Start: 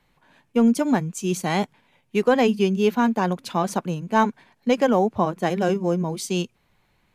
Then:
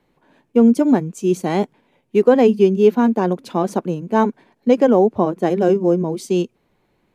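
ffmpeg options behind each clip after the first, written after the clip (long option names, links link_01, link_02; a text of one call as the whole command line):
ffmpeg -i in.wav -af "equalizer=frequency=360:width_type=o:width=2:gain=13,volume=-4dB" out.wav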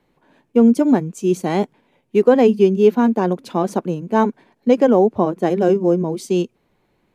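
ffmpeg -i in.wav -af anull out.wav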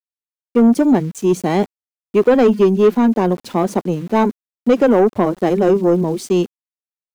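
ffmpeg -i in.wav -af "aeval=exprs='val(0)*gte(abs(val(0)),0.00944)':channel_layout=same,acontrast=89,volume=-3.5dB" out.wav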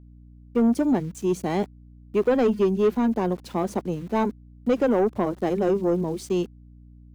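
ffmpeg -i in.wav -af "aeval=exprs='val(0)+0.0126*(sin(2*PI*60*n/s)+sin(2*PI*2*60*n/s)/2+sin(2*PI*3*60*n/s)/3+sin(2*PI*4*60*n/s)/4+sin(2*PI*5*60*n/s)/5)':channel_layout=same,volume=-8.5dB" out.wav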